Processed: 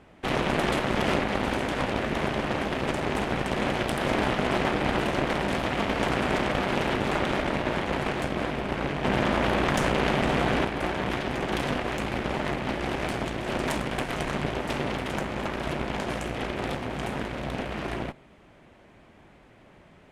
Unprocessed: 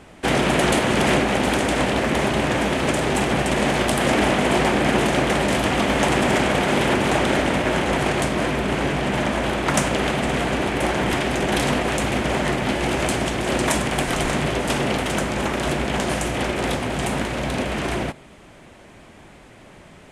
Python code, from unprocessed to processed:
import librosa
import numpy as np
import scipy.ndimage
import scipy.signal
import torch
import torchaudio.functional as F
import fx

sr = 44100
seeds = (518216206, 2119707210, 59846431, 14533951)

y = fx.peak_eq(x, sr, hz=8700.0, db=-10.5, octaves=1.6)
y = fx.cheby_harmonics(y, sr, harmonics=(4,), levels_db=(-9,), full_scale_db=-5.0)
y = fx.env_flatten(y, sr, amount_pct=100, at=(9.04, 10.65))
y = y * 10.0 ** (-8.0 / 20.0)